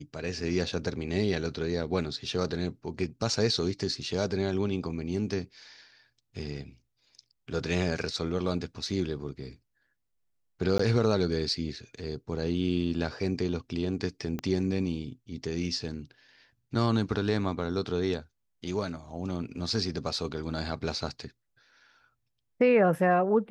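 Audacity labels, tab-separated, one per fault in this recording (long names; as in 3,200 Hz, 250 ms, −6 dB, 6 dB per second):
10.780000	10.790000	drop-out 14 ms
14.390000	14.390000	click −20 dBFS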